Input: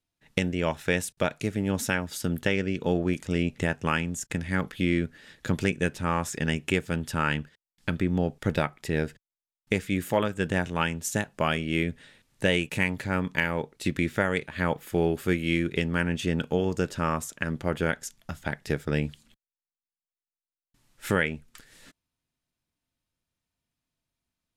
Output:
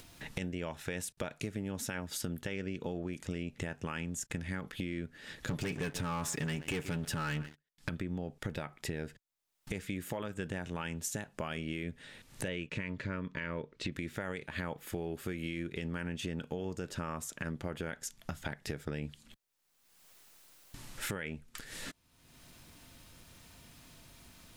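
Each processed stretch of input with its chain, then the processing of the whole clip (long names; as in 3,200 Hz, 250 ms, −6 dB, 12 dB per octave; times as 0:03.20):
0:05.49–0:07.89: comb filter 7 ms, depth 32% + single-tap delay 133 ms −24 dB + leveller curve on the samples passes 3
0:12.48–0:13.92: Butterworth band-reject 780 Hz, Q 3.3 + high-frequency loss of the air 130 metres
whole clip: upward compression, threshold −29 dBFS; brickwall limiter −18 dBFS; downward compressor, threshold −32 dBFS; level −2 dB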